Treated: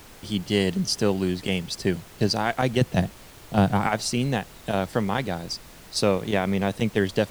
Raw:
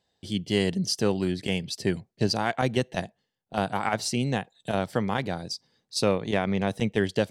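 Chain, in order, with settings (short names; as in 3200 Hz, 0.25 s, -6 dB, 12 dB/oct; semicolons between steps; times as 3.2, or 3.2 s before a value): 2.81–3.87 bell 120 Hz +12 dB 2.5 oct; added noise pink -48 dBFS; gain +2 dB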